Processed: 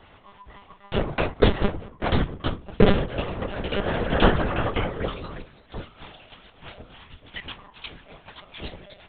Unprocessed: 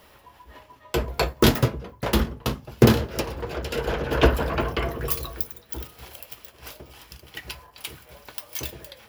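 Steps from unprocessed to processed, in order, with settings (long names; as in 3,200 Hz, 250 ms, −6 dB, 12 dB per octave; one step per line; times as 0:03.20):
pitch shifter swept by a sawtooth +2 semitones, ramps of 365 ms
one-pitch LPC vocoder at 8 kHz 200 Hz
level +2.5 dB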